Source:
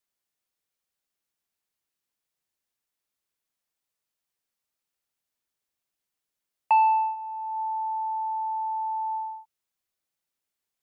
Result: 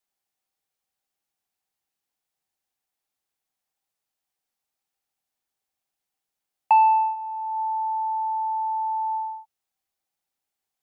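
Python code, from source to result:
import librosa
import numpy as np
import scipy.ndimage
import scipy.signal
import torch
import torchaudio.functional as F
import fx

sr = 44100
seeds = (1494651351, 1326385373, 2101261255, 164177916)

y = fx.peak_eq(x, sr, hz=780.0, db=11.0, octaves=0.21)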